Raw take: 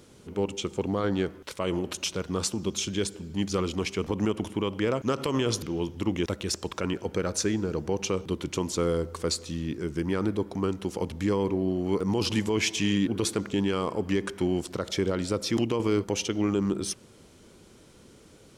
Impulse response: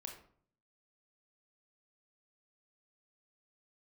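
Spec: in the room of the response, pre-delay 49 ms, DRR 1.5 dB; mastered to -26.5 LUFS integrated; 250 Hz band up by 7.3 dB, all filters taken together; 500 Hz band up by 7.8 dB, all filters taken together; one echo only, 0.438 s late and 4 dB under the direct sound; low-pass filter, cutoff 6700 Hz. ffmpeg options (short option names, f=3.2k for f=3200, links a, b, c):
-filter_complex "[0:a]lowpass=6.7k,equalizer=f=250:t=o:g=7.5,equalizer=f=500:t=o:g=7,aecho=1:1:438:0.631,asplit=2[a][b];[1:a]atrim=start_sample=2205,adelay=49[c];[b][c]afir=irnorm=-1:irlink=0,volume=2.5dB[d];[a][d]amix=inputs=2:normalize=0,volume=-8dB"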